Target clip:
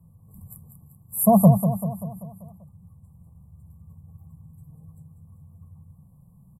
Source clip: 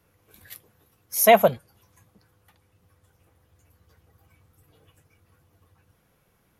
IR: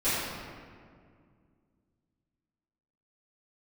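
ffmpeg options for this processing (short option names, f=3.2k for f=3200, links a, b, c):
-af "afftfilt=real='re*(1-between(b*sr/4096,1200,7300))':imag='im*(1-between(b*sr/4096,1200,7300))':win_size=4096:overlap=0.75,lowshelf=f=250:t=q:w=3:g=13.5,aecho=1:1:194|388|582|776|970|1164:0.355|0.188|0.0997|0.0528|0.028|0.0148,volume=-2dB"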